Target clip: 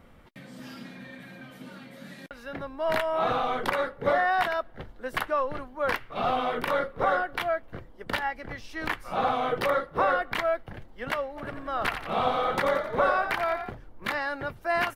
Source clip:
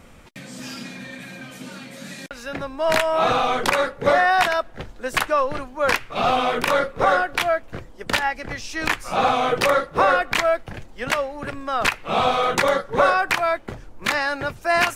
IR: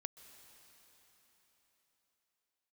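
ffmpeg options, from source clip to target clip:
-filter_complex "[0:a]equalizer=frequency=7000:width=0.96:gain=-13,bandreject=frequency=2500:width=11,asplit=3[link_01][link_02][link_03];[link_01]afade=type=out:start_time=11.36:duration=0.02[link_04];[link_02]asplit=7[link_05][link_06][link_07][link_08][link_09][link_10][link_11];[link_06]adelay=88,afreqshift=33,volume=-8.5dB[link_12];[link_07]adelay=176,afreqshift=66,volume=-14.5dB[link_13];[link_08]adelay=264,afreqshift=99,volume=-20.5dB[link_14];[link_09]adelay=352,afreqshift=132,volume=-26.6dB[link_15];[link_10]adelay=440,afreqshift=165,volume=-32.6dB[link_16];[link_11]adelay=528,afreqshift=198,volume=-38.6dB[link_17];[link_05][link_12][link_13][link_14][link_15][link_16][link_17]amix=inputs=7:normalize=0,afade=type=in:start_time=11.36:duration=0.02,afade=type=out:start_time=13.69:duration=0.02[link_18];[link_03]afade=type=in:start_time=13.69:duration=0.02[link_19];[link_04][link_18][link_19]amix=inputs=3:normalize=0,volume=-6.5dB"

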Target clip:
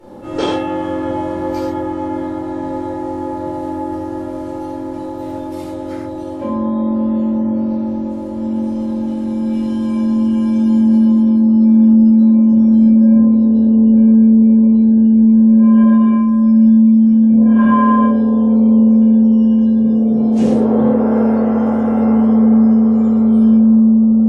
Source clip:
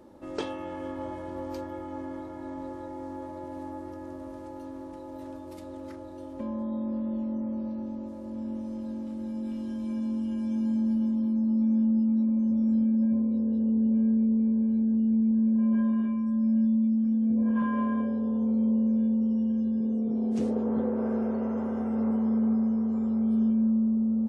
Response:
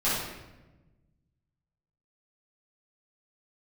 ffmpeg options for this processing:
-filter_complex "[1:a]atrim=start_sample=2205,atrim=end_sample=4410,asetrate=29106,aresample=44100[link_01];[0:a][link_01]afir=irnorm=-1:irlink=0,volume=2.5dB"

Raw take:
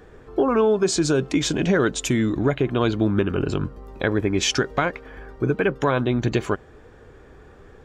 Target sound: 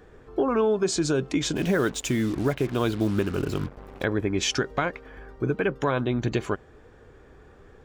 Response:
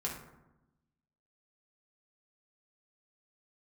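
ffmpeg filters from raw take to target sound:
-filter_complex "[0:a]asplit=3[link_01][link_02][link_03];[link_01]afade=type=out:start_time=1.55:duration=0.02[link_04];[link_02]acrusher=bits=5:mix=0:aa=0.5,afade=type=in:start_time=1.55:duration=0.02,afade=type=out:start_time=4.03:duration=0.02[link_05];[link_03]afade=type=in:start_time=4.03:duration=0.02[link_06];[link_04][link_05][link_06]amix=inputs=3:normalize=0,volume=-4dB"

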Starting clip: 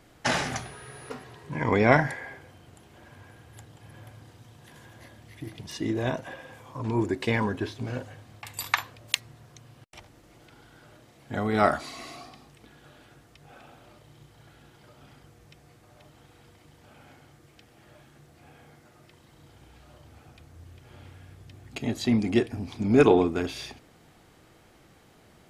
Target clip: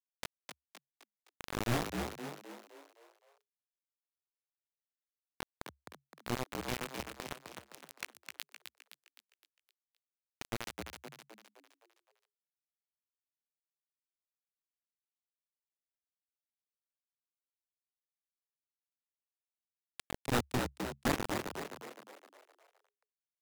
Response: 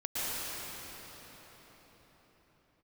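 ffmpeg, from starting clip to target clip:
-filter_complex "[0:a]lowpass=frequency=1200:poles=1,equalizer=frequency=470:width=3.8:gain=-11.5,bandreject=frequency=50:width_type=h:width=6,bandreject=frequency=100:width_type=h:width=6,bandreject=frequency=150:width_type=h:width=6,bandreject=frequency=200:width_type=h:width=6,bandreject=frequency=250:width_type=h:width=6,bandreject=frequency=300:width_type=h:width=6,acrossover=split=220[link_01][link_02];[link_01]aeval=exprs='0.119*(cos(1*acos(clip(val(0)/0.119,-1,1)))-cos(1*PI/2))+0.0376*(cos(3*acos(clip(val(0)/0.119,-1,1)))-cos(3*PI/2))+0.00106*(cos(4*acos(clip(val(0)/0.119,-1,1)))-cos(4*PI/2))+0.00376*(cos(5*acos(clip(val(0)/0.119,-1,1)))-cos(5*PI/2))':channel_layout=same[link_03];[link_02]acompressor=threshold=-41dB:ratio=20[link_04];[link_03][link_04]amix=inputs=2:normalize=0,flanger=delay=18:depth=6.6:speed=0.45,acrusher=bits=6:mode=log:mix=0:aa=0.000001,aeval=exprs='(mod(22.4*val(0)+1,2)-1)/22.4':channel_layout=same,acrusher=bits=5:mix=0:aa=0.000001,asplit=7[link_05][link_06][link_07][link_08][link_09][link_10][link_11];[link_06]adelay=281,afreqshift=63,volume=-5.5dB[link_12];[link_07]adelay=562,afreqshift=126,volume=-11.9dB[link_13];[link_08]adelay=843,afreqshift=189,volume=-18.3dB[link_14];[link_09]adelay=1124,afreqshift=252,volume=-24.6dB[link_15];[link_10]adelay=1405,afreqshift=315,volume=-31dB[link_16];[link_11]adelay=1686,afreqshift=378,volume=-37.4dB[link_17];[link_05][link_12][link_13][link_14][link_15][link_16][link_17]amix=inputs=7:normalize=0,asetrate=48000,aresample=44100,volume=5.5dB"

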